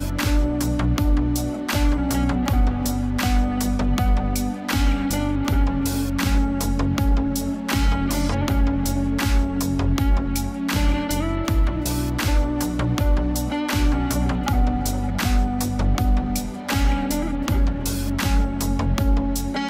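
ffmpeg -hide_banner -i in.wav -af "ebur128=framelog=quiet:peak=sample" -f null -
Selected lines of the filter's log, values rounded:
Integrated loudness:
  I:         -22.4 LUFS
  Threshold: -32.4 LUFS
Loudness range:
  LRA:         0.9 LU
  Threshold: -42.4 LUFS
  LRA low:   -23.0 LUFS
  LRA high:  -22.0 LUFS
Sample peak:
  Peak:      -10.3 dBFS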